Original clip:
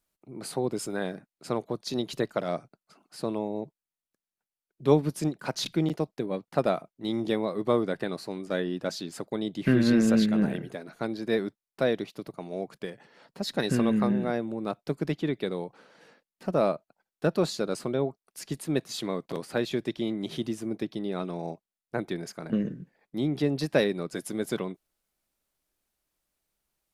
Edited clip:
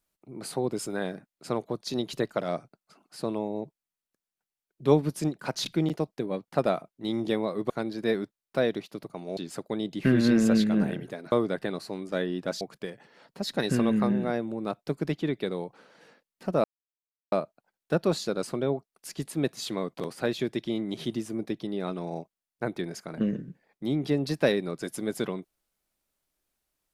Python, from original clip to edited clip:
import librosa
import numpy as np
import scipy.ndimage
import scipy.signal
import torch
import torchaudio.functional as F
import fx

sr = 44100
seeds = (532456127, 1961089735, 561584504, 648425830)

y = fx.edit(x, sr, fx.swap(start_s=7.7, length_s=1.29, other_s=10.94, other_length_s=1.67),
    fx.insert_silence(at_s=16.64, length_s=0.68), tone=tone)